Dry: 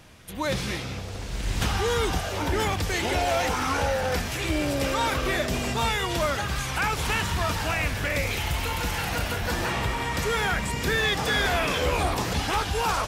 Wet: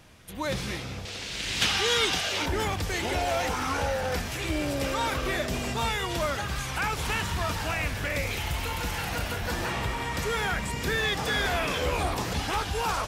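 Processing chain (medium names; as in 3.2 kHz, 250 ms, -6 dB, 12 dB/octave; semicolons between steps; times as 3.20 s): 1.05–2.46 s: frequency weighting D; trim -3 dB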